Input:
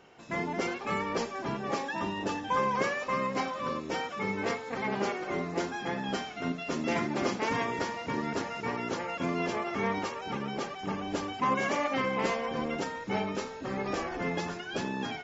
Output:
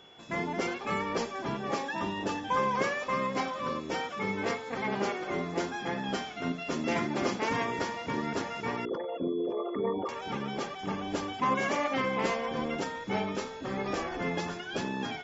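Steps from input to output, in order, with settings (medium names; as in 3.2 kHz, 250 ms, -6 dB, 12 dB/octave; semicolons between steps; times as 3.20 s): 8.85–10.09 s: resonances exaggerated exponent 3; whistle 3.4 kHz -55 dBFS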